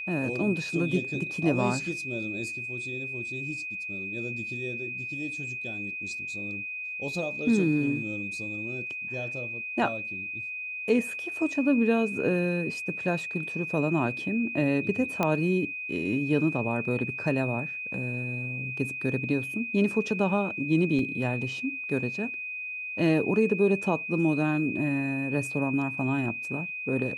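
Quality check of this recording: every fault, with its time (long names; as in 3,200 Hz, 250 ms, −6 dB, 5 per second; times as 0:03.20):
whistle 2,500 Hz −33 dBFS
0:15.23: click −12 dBFS
0:20.99: drop-out 2.5 ms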